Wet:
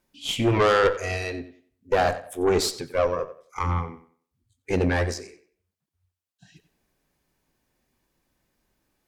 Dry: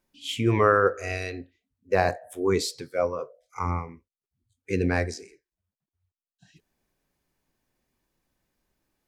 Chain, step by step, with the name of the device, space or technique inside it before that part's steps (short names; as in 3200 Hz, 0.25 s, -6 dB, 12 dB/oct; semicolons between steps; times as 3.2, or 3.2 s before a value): rockabilly slapback (tube stage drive 21 dB, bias 0.6; tape echo 92 ms, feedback 29%, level -13 dB, low-pass 5000 Hz); gain +7 dB